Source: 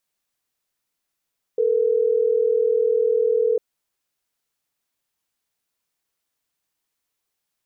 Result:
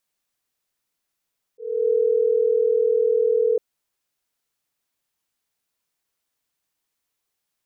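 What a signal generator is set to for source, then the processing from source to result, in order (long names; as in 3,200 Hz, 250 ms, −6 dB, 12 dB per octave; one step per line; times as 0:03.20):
call progress tone ringback tone, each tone −19 dBFS
volume swells 312 ms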